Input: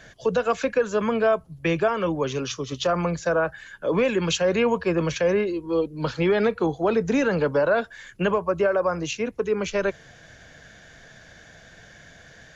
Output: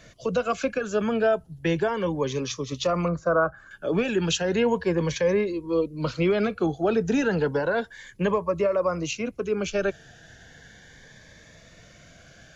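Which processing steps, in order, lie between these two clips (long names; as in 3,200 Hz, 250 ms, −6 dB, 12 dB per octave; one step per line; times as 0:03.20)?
0:03.08–0:03.71: high shelf with overshoot 1,800 Hz −12.5 dB, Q 3
phaser whose notches keep moving one way rising 0.34 Hz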